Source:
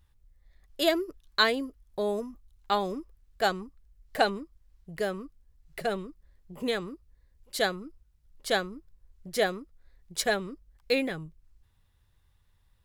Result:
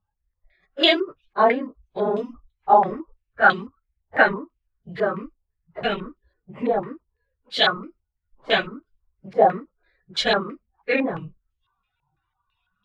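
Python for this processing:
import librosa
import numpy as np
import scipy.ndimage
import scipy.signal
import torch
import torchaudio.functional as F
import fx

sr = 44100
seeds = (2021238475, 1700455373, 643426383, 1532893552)

y = fx.phase_scramble(x, sr, seeds[0], window_ms=50)
y = fx.noise_reduce_blind(y, sr, reduce_db=20)
y = fx.filter_held_lowpass(y, sr, hz=6.0, low_hz=820.0, high_hz=3300.0)
y = y * 10.0 ** (5.0 / 20.0)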